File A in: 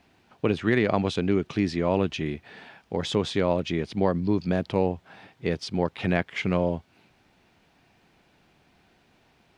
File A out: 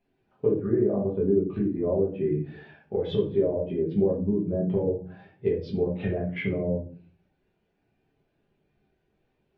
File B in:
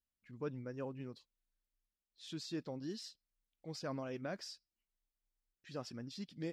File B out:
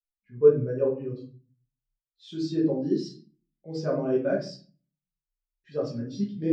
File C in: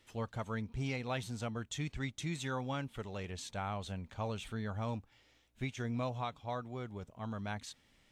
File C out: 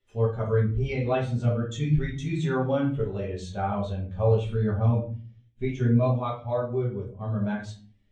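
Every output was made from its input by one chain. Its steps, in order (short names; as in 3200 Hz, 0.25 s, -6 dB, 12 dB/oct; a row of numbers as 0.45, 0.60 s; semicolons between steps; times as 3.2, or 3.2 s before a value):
treble ducked by the level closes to 1000 Hz, closed at -21.5 dBFS; bell 450 Hz +3 dB 0.72 oct; compressor 6:1, threshold -28 dBFS; shoebox room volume 83 m³, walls mixed, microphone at 1.3 m; spectral expander 1.5:1; match loudness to -27 LUFS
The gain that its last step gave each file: +1.5, +13.5, +7.5 dB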